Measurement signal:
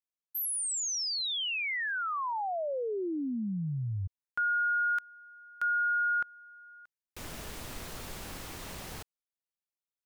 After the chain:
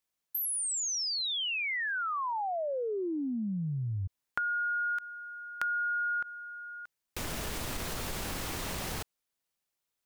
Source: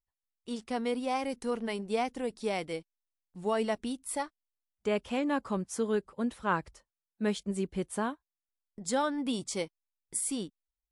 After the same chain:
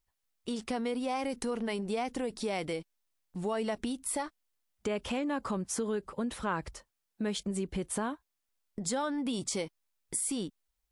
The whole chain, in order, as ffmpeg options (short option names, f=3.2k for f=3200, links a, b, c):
-af "acompressor=threshold=-45dB:ratio=3:attack=14:release=64:detection=peak,volume=9dB"